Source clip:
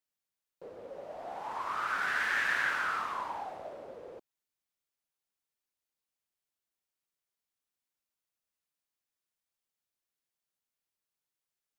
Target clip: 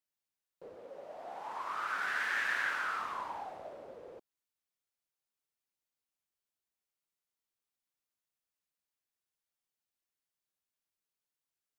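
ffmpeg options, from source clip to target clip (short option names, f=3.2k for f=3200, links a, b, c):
-filter_complex "[0:a]asettb=1/sr,asplit=3[a][b][c];[a]atrim=end=0.764[d];[b]atrim=start=0.76:end=3.01,asetpts=PTS-STARTPTS,afade=t=in:d=0.004:c=qsin,afade=t=out:st=2.246:d=0.004:c=qsin,lowshelf=f=130:g=-12[e];[c]atrim=start=3.006[f];[d][e]acrossfade=d=0.004:c1=hsin:c2=qsin[g];[g][f]acrossfade=d=0.004:c1=qsin:c2=hsin,volume=-3dB"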